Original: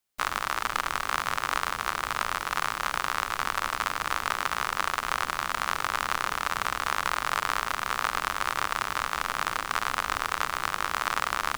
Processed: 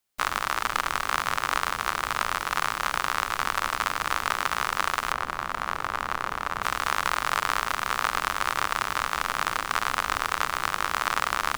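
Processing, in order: 5.12–6.63 s: treble shelf 2.2 kHz -10.5 dB; trim +2 dB

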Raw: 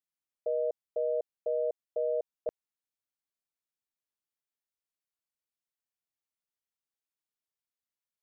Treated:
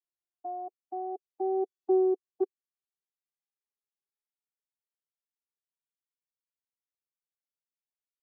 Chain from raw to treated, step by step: vocoder on a note that slides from E4, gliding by +10 st; Doppler pass-by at 1.85 s, 17 m/s, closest 6.6 m; reverb removal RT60 0.77 s; trim +8 dB

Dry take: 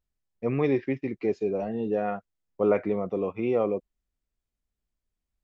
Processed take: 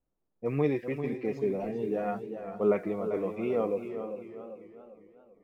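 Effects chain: flange 0.81 Hz, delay 3.8 ms, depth 3.1 ms, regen +51%; word length cut 12-bit, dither triangular; level-controlled noise filter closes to 490 Hz, open at -30 dBFS; on a send: filtered feedback delay 449 ms, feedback 36%, low-pass 2.2 kHz, level -15 dB; on the sum: modulated delay 396 ms, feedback 44%, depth 97 cents, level -9 dB

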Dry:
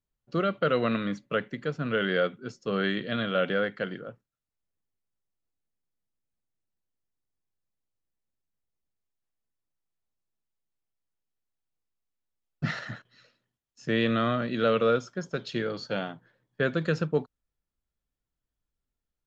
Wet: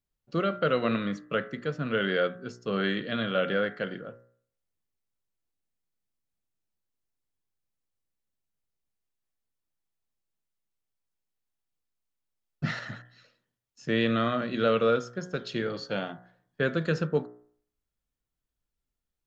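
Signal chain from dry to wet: de-hum 60.36 Hz, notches 33

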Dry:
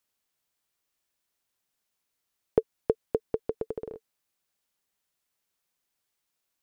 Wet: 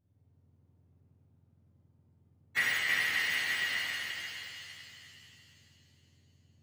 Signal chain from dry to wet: spectrum inverted on a logarithmic axis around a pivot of 930 Hz; pitch-shifted reverb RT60 3 s, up +7 st, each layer -8 dB, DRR -10.5 dB; trim -4.5 dB

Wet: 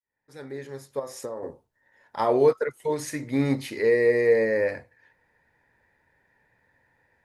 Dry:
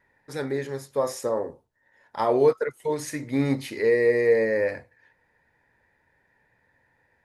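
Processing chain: fade-in on the opening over 1.43 s; 0.99–1.43 s: compression 12:1, threshold -31 dBFS, peak gain reduction 10 dB

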